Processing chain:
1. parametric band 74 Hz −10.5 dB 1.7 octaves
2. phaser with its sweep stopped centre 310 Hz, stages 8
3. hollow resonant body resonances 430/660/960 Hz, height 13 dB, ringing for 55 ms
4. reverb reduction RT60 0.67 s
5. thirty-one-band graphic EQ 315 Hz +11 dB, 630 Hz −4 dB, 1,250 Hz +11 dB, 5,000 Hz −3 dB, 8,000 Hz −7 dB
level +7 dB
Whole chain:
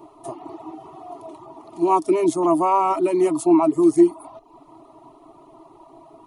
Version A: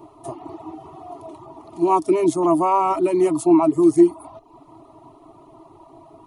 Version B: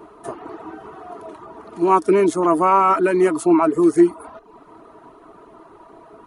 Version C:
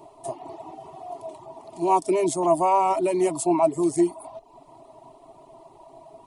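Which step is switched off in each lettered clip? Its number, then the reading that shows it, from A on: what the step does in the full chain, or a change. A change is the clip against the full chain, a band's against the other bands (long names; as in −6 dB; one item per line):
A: 1, 125 Hz band +3.5 dB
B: 2, change in momentary loudness spread −1 LU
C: 5, change in momentary loudness spread −2 LU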